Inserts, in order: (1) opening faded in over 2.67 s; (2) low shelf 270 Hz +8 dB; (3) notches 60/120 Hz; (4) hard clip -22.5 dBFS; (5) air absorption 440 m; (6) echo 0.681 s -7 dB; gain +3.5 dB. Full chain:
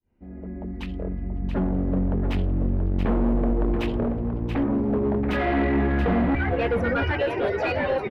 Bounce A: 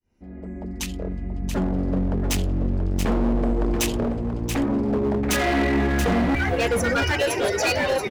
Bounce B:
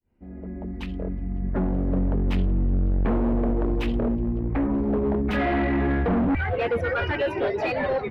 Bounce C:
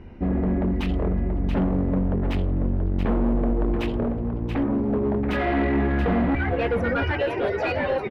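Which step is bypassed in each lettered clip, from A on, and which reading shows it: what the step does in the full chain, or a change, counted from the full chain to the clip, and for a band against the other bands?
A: 5, 4 kHz band +9.0 dB; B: 6, crest factor change -3.0 dB; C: 1, momentary loudness spread change -7 LU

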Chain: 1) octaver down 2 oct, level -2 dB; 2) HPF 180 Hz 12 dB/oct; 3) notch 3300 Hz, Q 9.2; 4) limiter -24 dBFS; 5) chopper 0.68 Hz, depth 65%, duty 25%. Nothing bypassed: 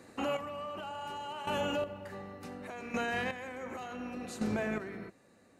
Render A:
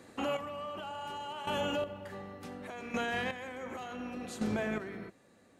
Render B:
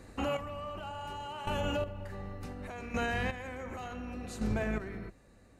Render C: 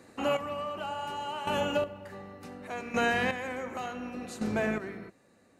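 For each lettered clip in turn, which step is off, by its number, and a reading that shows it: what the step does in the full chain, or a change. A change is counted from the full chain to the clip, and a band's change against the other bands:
3, 4 kHz band +1.5 dB; 2, 125 Hz band +7.5 dB; 4, mean gain reduction 3.0 dB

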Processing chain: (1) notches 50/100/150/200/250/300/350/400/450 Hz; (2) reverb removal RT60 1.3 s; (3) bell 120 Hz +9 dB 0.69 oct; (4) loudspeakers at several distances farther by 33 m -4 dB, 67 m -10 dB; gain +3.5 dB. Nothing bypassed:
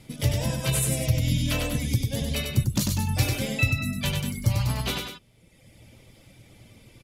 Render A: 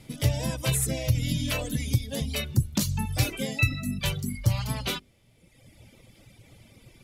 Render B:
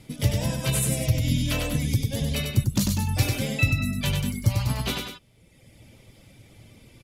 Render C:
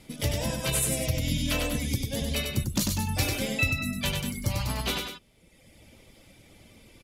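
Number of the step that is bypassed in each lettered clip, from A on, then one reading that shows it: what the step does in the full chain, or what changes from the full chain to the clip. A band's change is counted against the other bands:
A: 4, echo-to-direct -3.0 dB to none; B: 1, 250 Hz band +1.5 dB; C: 3, 125 Hz band -6.0 dB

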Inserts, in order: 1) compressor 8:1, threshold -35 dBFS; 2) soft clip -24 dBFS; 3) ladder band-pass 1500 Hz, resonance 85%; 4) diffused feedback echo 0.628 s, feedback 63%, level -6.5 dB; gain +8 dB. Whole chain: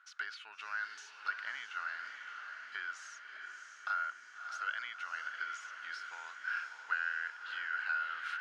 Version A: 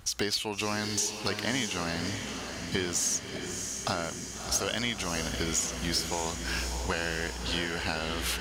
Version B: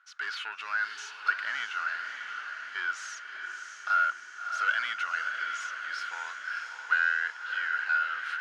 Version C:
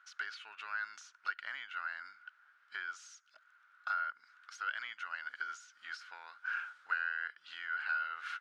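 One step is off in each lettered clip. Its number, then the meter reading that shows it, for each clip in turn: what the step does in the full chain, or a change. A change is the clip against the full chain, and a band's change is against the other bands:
3, 2 kHz band -22.0 dB; 1, mean gain reduction 9.5 dB; 4, echo-to-direct -4.5 dB to none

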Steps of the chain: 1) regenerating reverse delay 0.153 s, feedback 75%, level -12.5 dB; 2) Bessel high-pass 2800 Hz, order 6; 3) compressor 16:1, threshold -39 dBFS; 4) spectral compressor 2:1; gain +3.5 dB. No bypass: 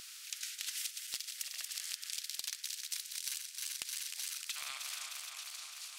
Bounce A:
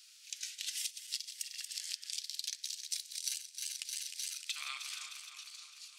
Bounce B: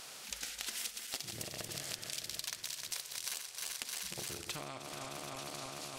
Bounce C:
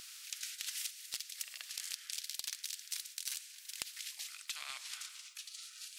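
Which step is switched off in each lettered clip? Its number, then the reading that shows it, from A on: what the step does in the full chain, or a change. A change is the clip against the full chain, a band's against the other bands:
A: 4, momentary loudness spread change +4 LU; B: 2, 1 kHz band +9.0 dB; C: 1, crest factor change +3.0 dB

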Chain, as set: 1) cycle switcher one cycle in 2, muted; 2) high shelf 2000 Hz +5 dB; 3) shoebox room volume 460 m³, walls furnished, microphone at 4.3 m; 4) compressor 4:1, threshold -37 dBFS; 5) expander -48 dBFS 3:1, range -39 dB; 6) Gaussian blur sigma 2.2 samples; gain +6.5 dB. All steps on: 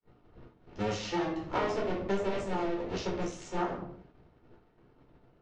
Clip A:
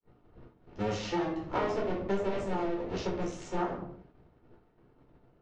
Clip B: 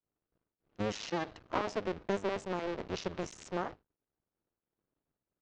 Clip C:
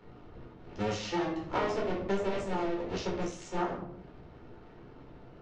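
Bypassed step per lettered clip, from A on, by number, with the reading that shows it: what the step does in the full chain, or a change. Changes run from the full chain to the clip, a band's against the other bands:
2, 8 kHz band -2.5 dB; 3, momentary loudness spread change -3 LU; 5, momentary loudness spread change +13 LU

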